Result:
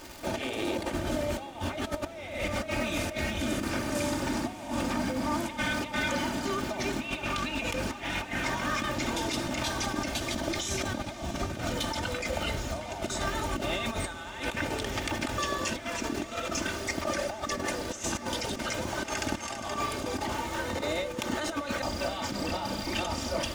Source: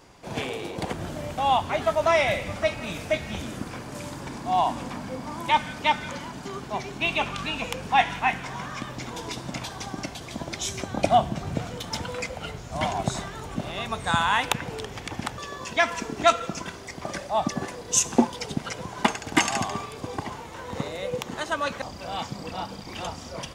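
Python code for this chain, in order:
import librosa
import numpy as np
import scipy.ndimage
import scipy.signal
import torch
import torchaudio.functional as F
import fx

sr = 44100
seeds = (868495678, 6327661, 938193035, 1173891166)

y = fx.dmg_crackle(x, sr, seeds[0], per_s=530.0, level_db=-42.0)
y = fx.over_compress(y, sr, threshold_db=-35.0, ratio=-1.0)
y = fx.notch(y, sr, hz=1000.0, q=8.9)
y = y + 0.6 * np.pad(y, (int(3.3 * sr / 1000.0), 0))[:len(y)]
y = fx.echo_diffused(y, sr, ms=661, feedback_pct=73, wet_db=-15.0)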